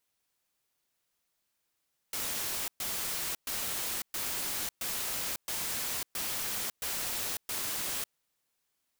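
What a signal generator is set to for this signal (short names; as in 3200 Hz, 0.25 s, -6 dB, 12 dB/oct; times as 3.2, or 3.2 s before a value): noise bursts white, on 0.55 s, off 0.12 s, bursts 9, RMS -34.5 dBFS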